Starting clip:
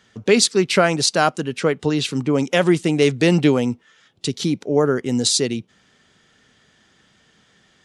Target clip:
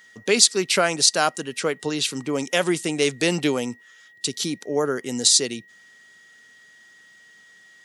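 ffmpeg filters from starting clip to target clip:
-filter_complex "[0:a]aemphasis=mode=production:type=bsi,aeval=exprs='val(0)+0.00501*sin(2*PI*1900*n/s)':c=same,acrossover=split=9300[s0][s1];[s1]acompressor=threshold=0.0282:ratio=4:attack=1:release=60[s2];[s0][s2]amix=inputs=2:normalize=0,volume=0.668"

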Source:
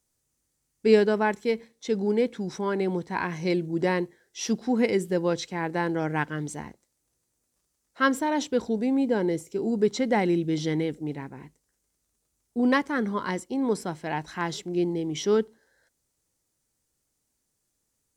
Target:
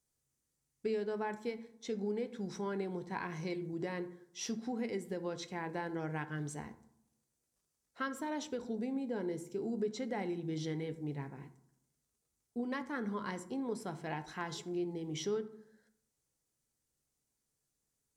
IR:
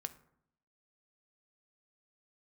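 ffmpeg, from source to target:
-filter_complex "[0:a]acompressor=threshold=0.0447:ratio=6[s0];[1:a]atrim=start_sample=2205,asetrate=40131,aresample=44100[s1];[s0][s1]afir=irnorm=-1:irlink=0,volume=0.531"

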